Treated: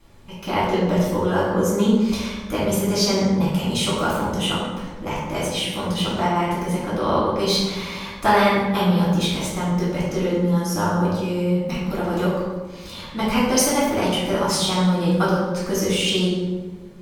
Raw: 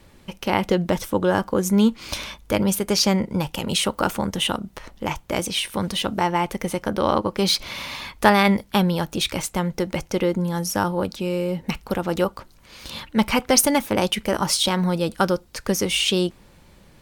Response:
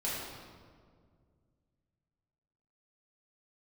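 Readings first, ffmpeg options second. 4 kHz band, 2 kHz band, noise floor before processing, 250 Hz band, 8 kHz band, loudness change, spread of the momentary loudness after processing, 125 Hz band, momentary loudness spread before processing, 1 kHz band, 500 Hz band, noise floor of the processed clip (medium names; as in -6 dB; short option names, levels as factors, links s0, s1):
-0.5 dB, -0.5 dB, -52 dBFS, +2.0 dB, -1.5 dB, +1.0 dB, 8 LU, +3.5 dB, 10 LU, +1.0 dB, +1.5 dB, -36 dBFS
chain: -filter_complex "[1:a]atrim=start_sample=2205,asetrate=70560,aresample=44100[s0];[0:a][s0]afir=irnorm=-1:irlink=0,volume=0.841"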